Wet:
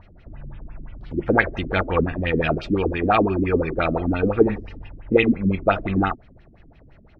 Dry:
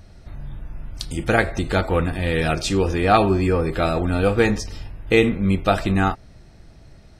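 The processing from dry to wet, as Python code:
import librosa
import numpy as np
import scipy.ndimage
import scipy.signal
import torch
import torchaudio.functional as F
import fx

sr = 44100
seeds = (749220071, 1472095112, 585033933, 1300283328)

p1 = fx.high_shelf(x, sr, hz=9400.0, db=-6.5)
p2 = fx.rider(p1, sr, range_db=10, speed_s=0.5)
p3 = p1 + F.gain(torch.from_numpy(p2), 0.0).numpy()
p4 = fx.filter_lfo_lowpass(p3, sr, shape='sine', hz=5.8, low_hz=240.0, high_hz=3000.0, q=4.2)
y = F.gain(torch.from_numpy(p4), -10.5).numpy()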